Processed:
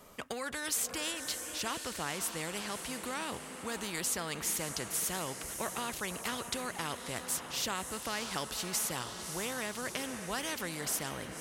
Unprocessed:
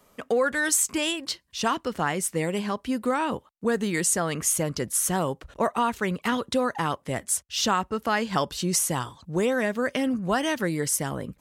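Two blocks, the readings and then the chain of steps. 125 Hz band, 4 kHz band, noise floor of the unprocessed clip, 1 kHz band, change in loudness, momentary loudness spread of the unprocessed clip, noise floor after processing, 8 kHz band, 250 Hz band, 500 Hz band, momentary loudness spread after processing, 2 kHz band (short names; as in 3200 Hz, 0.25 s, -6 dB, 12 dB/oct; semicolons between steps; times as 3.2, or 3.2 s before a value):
-13.5 dB, -5.5 dB, -63 dBFS, -11.5 dB, -9.5 dB, 6 LU, -45 dBFS, -8.0 dB, -14.5 dB, -14.0 dB, 6 LU, -9.0 dB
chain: wow and flutter 17 cents; diffused feedback echo 0.591 s, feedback 54%, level -16 dB; spectral compressor 2:1; gain -8.5 dB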